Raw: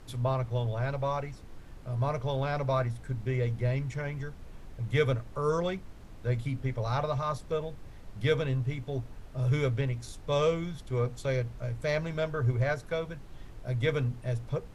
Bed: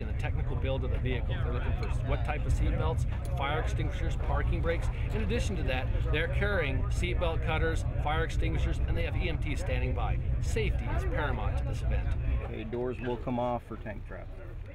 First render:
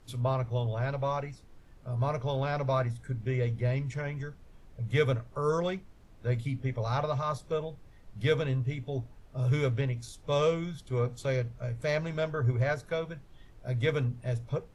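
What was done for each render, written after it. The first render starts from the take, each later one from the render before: noise print and reduce 8 dB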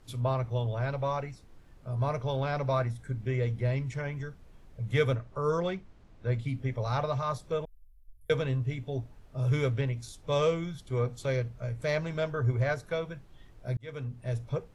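5.15–6.48 air absorption 57 m; 7.65–8.3 inverse Chebyshev band-stop 130–5800 Hz, stop band 50 dB; 13.77–14.36 fade in linear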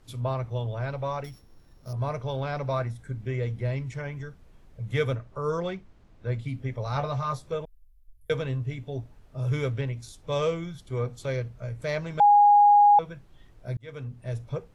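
1.24–1.93 sample sorter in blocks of 8 samples; 6.94–7.55 doubler 14 ms -5 dB; 12.2–12.99 bleep 823 Hz -13 dBFS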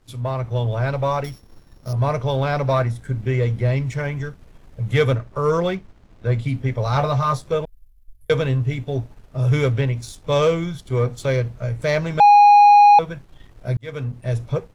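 sample leveller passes 1; AGC gain up to 6 dB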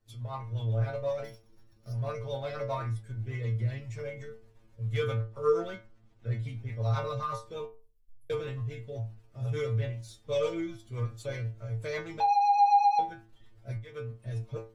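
rotary speaker horn 8 Hz; metallic resonator 110 Hz, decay 0.36 s, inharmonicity 0.002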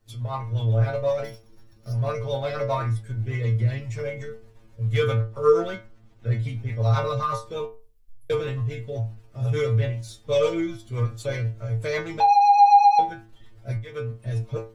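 gain +8 dB

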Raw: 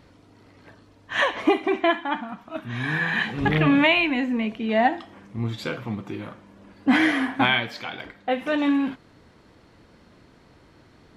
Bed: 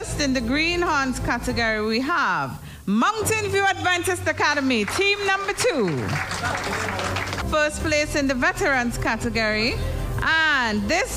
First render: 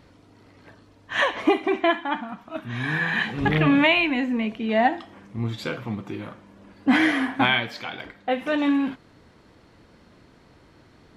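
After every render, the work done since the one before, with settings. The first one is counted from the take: nothing audible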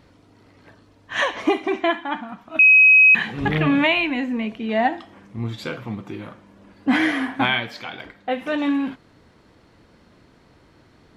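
1.16–1.89 bell 6000 Hz +6 dB; 2.59–3.15 bleep 2540 Hz -8 dBFS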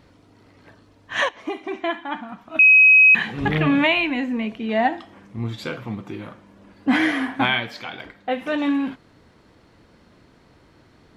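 1.29–2.44 fade in, from -14.5 dB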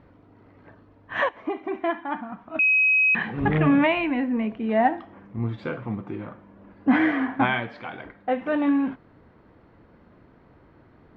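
LPF 1700 Hz 12 dB/oct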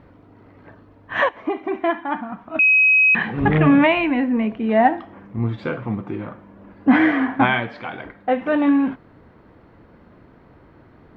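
gain +5 dB

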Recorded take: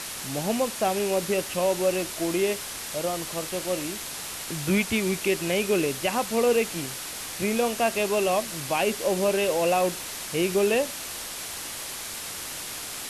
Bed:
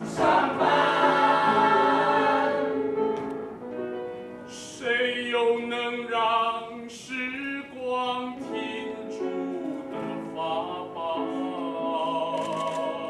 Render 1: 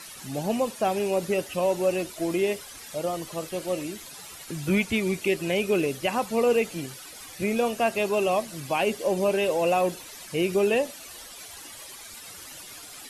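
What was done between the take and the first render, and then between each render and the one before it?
denoiser 13 dB, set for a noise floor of -36 dBFS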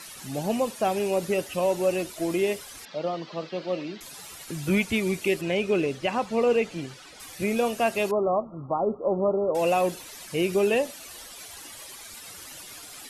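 2.85–4.01 elliptic band-pass 160–4600 Hz; 5.41–7.2 air absorption 80 m; 8.11–9.55 brick-wall FIR low-pass 1400 Hz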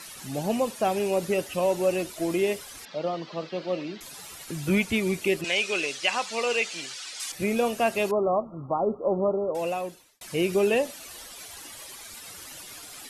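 5.44–7.32 weighting filter ITU-R 468; 9.18–10.21 fade out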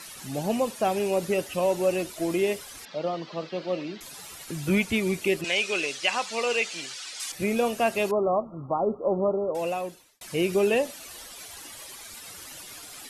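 nothing audible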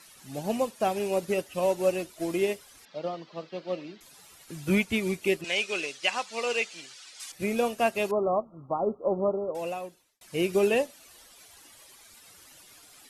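upward expander 1.5:1, over -40 dBFS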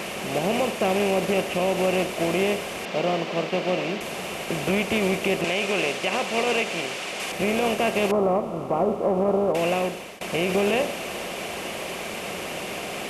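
per-bin compression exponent 0.4; limiter -13 dBFS, peak gain reduction 6 dB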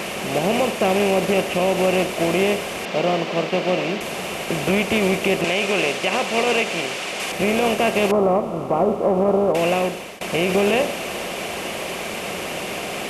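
gain +4 dB

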